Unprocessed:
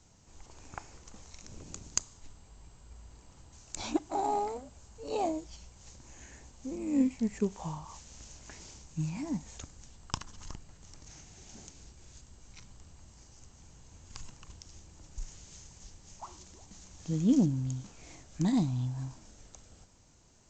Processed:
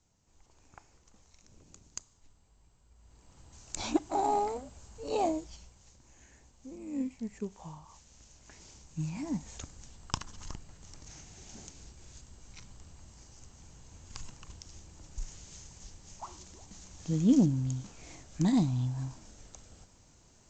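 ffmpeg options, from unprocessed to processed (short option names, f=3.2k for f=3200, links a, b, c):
-af "volume=11dB,afade=t=in:st=2.96:d=0.76:silence=0.223872,afade=t=out:st=5.32:d=0.56:silence=0.334965,afade=t=in:st=8.33:d=1.27:silence=0.354813"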